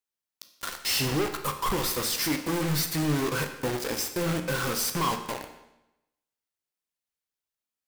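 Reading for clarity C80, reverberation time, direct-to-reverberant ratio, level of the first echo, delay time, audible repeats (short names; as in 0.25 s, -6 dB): 11.0 dB, 0.90 s, 5.5 dB, none, none, none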